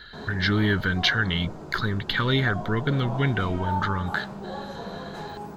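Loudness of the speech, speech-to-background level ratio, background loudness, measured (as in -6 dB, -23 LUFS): -25.0 LUFS, 11.0 dB, -36.0 LUFS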